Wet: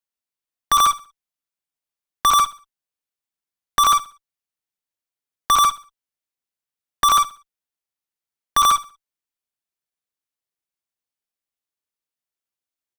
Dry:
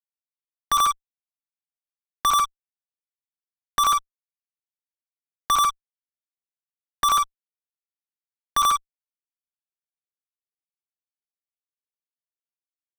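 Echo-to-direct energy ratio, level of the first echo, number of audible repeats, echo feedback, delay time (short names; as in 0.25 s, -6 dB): -17.5 dB, -18.0 dB, 2, 35%, 64 ms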